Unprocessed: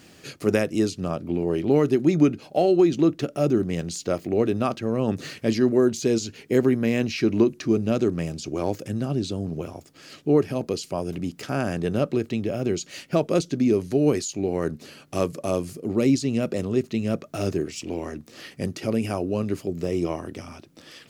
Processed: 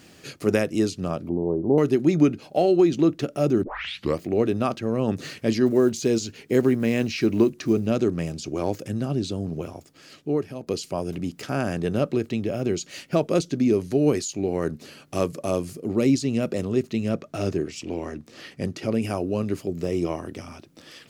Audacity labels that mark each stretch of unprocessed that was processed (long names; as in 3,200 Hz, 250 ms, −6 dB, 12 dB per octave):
1.290000	1.780000	elliptic low-pass filter 1,000 Hz, stop band 60 dB
3.630000	3.630000	tape start 0.57 s
5.660000	7.880000	one scale factor per block 7 bits
9.650000	10.670000	fade out, to −10 dB
17.090000	19.020000	high-shelf EQ 10,000 Hz −10.5 dB